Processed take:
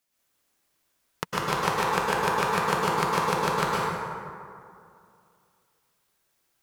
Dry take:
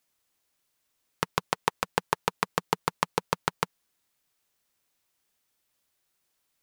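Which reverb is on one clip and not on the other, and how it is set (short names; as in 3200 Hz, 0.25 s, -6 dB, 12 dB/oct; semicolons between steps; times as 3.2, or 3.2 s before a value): plate-style reverb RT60 2.4 s, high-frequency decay 0.45×, pre-delay 95 ms, DRR -8 dB; gain -3 dB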